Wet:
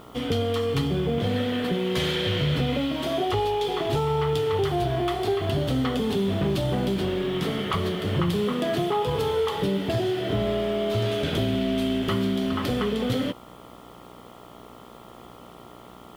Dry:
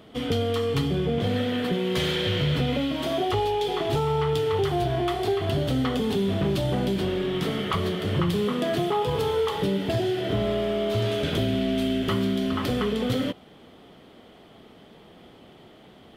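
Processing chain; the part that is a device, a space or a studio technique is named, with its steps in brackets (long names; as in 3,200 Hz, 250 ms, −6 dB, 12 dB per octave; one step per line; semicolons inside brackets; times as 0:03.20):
video cassette with head-switching buzz (hum with harmonics 60 Hz, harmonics 23, −48 dBFS 0 dB per octave; white noise bed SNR 36 dB)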